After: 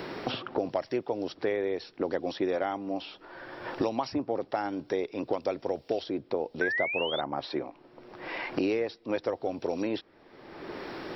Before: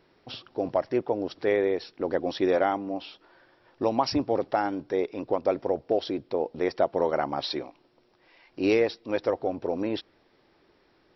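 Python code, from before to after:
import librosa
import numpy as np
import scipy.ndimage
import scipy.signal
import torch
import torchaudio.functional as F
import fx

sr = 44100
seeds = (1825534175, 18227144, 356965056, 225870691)

y = fx.spec_paint(x, sr, seeds[0], shape='rise', start_s=6.61, length_s=0.6, low_hz=1500.0, high_hz=3700.0, level_db=-24.0)
y = fx.band_squash(y, sr, depth_pct=100)
y = y * librosa.db_to_amplitude(-5.0)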